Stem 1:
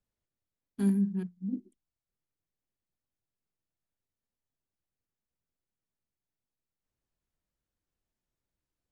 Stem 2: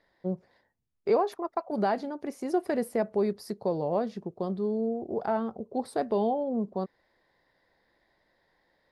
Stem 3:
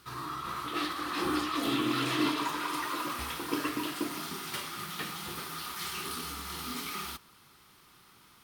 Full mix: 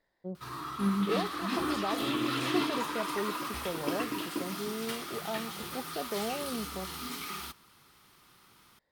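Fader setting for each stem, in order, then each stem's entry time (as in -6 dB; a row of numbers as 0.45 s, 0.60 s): -3.0 dB, -8.5 dB, -1.5 dB; 0.00 s, 0.00 s, 0.35 s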